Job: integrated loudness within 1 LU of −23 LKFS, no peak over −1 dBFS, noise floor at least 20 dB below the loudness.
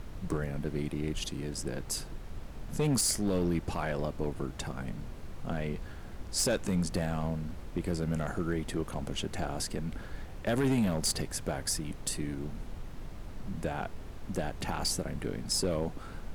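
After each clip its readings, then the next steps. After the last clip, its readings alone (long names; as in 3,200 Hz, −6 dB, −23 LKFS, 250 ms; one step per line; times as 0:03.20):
share of clipped samples 0.8%; peaks flattened at −22.5 dBFS; background noise floor −44 dBFS; target noise floor −54 dBFS; integrated loudness −33.5 LKFS; sample peak −22.5 dBFS; target loudness −23.0 LKFS
→ clipped peaks rebuilt −22.5 dBFS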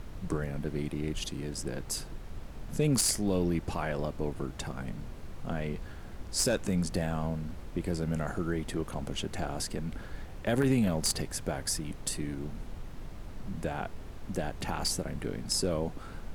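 share of clipped samples 0.0%; background noise floor −44 dBFS; target noise floor −53 dBFS
→ noise reduction from a noise print 9 dB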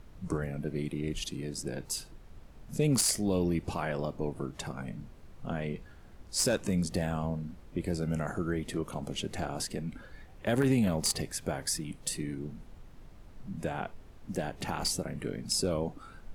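background noise floor −52 dBFS; target noise floor −53 dBFS
→ noise reduction from a noise print 6 dB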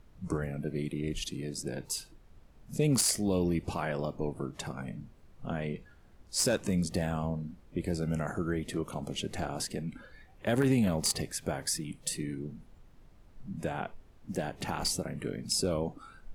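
background noise floor −57 dBFS; integrated loudness −33.0 LKFS; sample peak −13.0 dBFS; target loudness −23.0 LKFS
→ level +10 dB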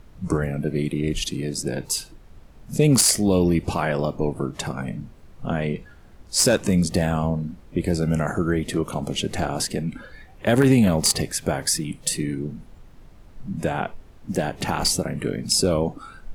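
integrated loudness −23.0 LKFS; sample peak −3.0 dBFS; background noise floor −47 dBFS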